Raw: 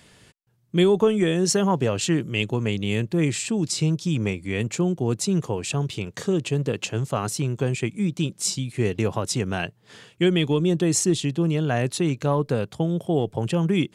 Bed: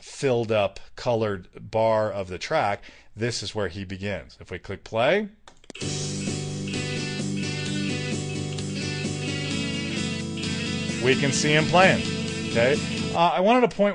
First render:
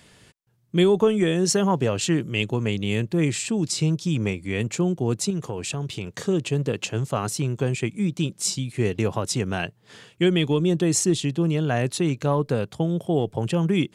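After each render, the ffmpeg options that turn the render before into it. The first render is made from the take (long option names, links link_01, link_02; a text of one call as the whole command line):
ffmpeg -i in.wav -filter_complex "[0:a]asettb=1/sr,asplit=3[link_01][link_02][link_03];[link_01]atrim=end=5.304[link_04];[link_02]atrim=start=5.3:end=6.18,asetpts=PTS-STARTPTS,afade=type=in:duration=0.004:curve=qsin,afade=type=out:start_time=0.876:duration=0.004:curve=qsin,acompressor=threshold=-25dB:ratio=3:attack=3.2:release=140:knee=1:detection=peak[link_05];[link_03]atrim=start=6.176[link_06];[link_04][link_05]acrossfade=duration=0.004:curve1=hsin:curve2=qsin[link_07];[link_07][link_06]acrossfade=duration=0.004:curve1=qsin:curve2=hsin" out.wav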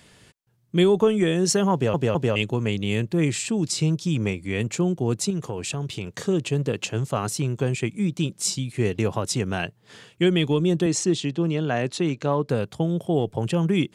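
ffmpeg -i in.wav -filter_complex "[0:a]asettb=1/sr,asplit=3[link_01][link_02][link_03];[link_01]atrim=end=10.864[link_04];[link_02]atrim=start=10.86:end=12.49,asetpts=PTS-STARTPTS,afade=type=in:duration=0.004:curve=qsin,afade=type=out:start_time=1.626:duration=0.004:curve=qsin,highpass=150,lowpass=6500[link_05];[link_03]atrim=start=12.486[link_06];[link_04][link_05]acrossfade=duration=0.004:curve1=hsin:curve2=qsin[link_07];[link_07][link_06]acrossfade=duration=0.004:curve1=qsin:curve2=hsin,asplit=4[link_08][link_09][link_10][link_11];[link_08]atrim=end=1.942[link_12];[link_09]atrim=start=1.728:end=1.942[link_13];[link_10]atrim=start=1.728:end=1.942[link_14];[link_11]atrim=start=2.358[link_15];[link_12][link_13]acrossfade=duration=0.004:curve1=hsin:curve2=hsin[link_16];[link_16][link_14]acrossfade=duration=0.004:curve1=hsin:curve2=hsin[link_17];[link_17][link_15]acrossfade=duration=0.004:curve1=hsin:curve2=hsin" out.wav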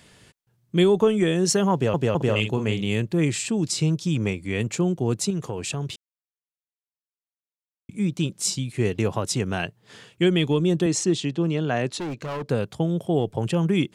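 ffmpeg -i in.wav -filter_complex "[0:a]asettb=1/sr,asplit=3[link_01][link_02][link_03];[link_01]atrim=end=2.164[link_04];[link_02]atrim=start=2.16:end=2.87,asetpts=PTS-STARTPTS,afade=type=in:duration=0.004:curve=qsin,afade=type=out:start_time=0.706:duration=0.004:curve=qsin,asplit=2[link_05][link_06];[link_06]adelay=46,volume=-8dB[link_07];[link_05][link_07]amix=inputs=2:normalize=0,atrim=end_sample=31311[link_08];[link_03]atrim=start=2.866[link_09];[link_04][link_08]acrossfade=duration=0.004:curve1=hsin:curve2=qsin[link_10];[link_10][link_09]acrossfade=duration=0.004:curve1=qsin:curve2=hsin,asettb=1/sr,asplit=3[link_11][link_12][link_13];[link_11]atrim=end=11.994[link_14];[link_12]atrim=start=11.99:end=12.48,asetpts=PTS-STARTPTS,afade=type=in:duration=0.004:curve=qsin,afade=type=out:start_time=0.486:duration=0.004:curve=qsin,volume=27.5dB,asoftclip=hard,volume=-27.5dB[link_15];[link_13]atrim=start=12.476[link_16];[link_14][link_15]acrossfade=duration=0.004:curve1=hsin:curve2=qsin[link_17];[link_17][link_16]acrossfade=duration=0.004:curve1=qsin:curve2=hsin,asplit=3[link_18][link_19][link_20];[link_18]atrim=end=5.96,asetpts=PTS-STARTPTS,afade=type=out:start_time=5.956:duration=0.004:curve=hsin[link_21];[link_19]atrim=start=5.96:end=7.89,asetpts=PTS-STARTPTS,volume=0[link_22];[link_20]atrim=start=7.89,asetpts=PTS-STARTPTS,afade=type=in:duration=0.004:curve=hsin[link_23];[link_21][link_22][link_23]concat=n=3:v=0:a=1" out.wav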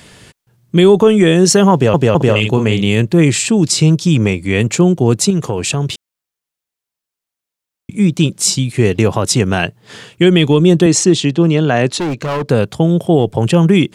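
ffmpeg -i in.wav -af "alimiter=level_in=12dB:limit=-1dB:release=50:level=0:latency=1" out.wav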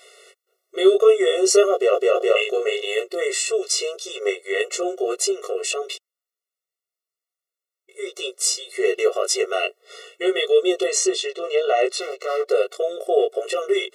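ffmpeg -i in.wav -af "flanger=delay=18:depth=3:speed=1.7,afftfilt=real='re*eq(mod(floor(b*sr/1024/370),2),1)':imag='im*eq(mod(floor(b*sr/1024/370),2),1)':win_size=1024:overlap=0.75" out.wav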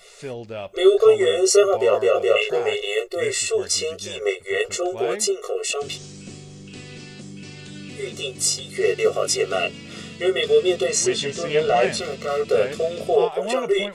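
ffmpeg -i in.wav -i bed.wav -filter_complex "[1:a]volume=-10dB[link_01];[0:a][link_01]amix=inputs=2:normalize=0" out.wav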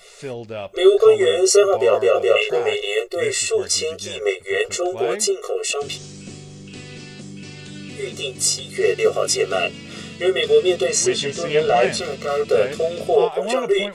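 ffmpeg -i in.wav -af "volume=2dB,alimiter=limit=-3dB:level=0:latency=1" out.wav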